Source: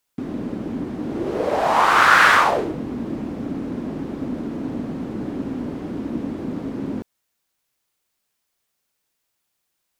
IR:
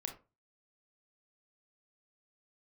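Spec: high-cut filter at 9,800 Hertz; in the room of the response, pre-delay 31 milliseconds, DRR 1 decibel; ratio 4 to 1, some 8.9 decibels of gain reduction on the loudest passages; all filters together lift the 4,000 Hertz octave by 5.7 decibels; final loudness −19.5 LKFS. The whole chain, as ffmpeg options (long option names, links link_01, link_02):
-filter_complex "[0:a]lowpass=9800,equalizer=frequency=4000:width_type=o:gain=7.5,acompressor=threshold=-19dB:ratio=4,asplit=2[link_01][link_02];[1:a]atrim=start_sample=2205,adelay=31[link_03];[link_02][link_03]afir=irnorm=-1:irlink=0,volume=0.5dB[link_04];[link_01][link_04]amix=inputs=2:normalize=0,volume=3.5dB"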